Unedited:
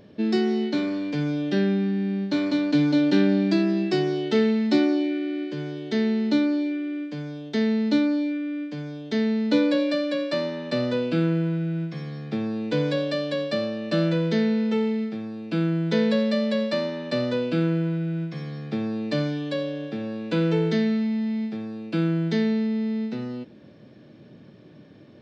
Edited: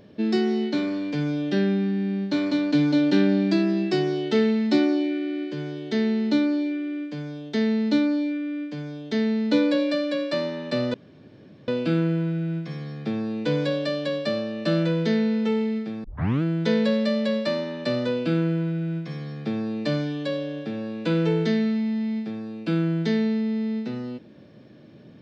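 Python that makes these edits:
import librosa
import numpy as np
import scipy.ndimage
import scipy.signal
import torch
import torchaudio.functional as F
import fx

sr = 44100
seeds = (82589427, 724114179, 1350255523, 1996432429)

y = fx.edit(x, sr, fx.insert_room_tone(at_s=10.94, length_s=0.74),
    fx.tape_start(start_s=15.3, length_s=0.38), tone=tone)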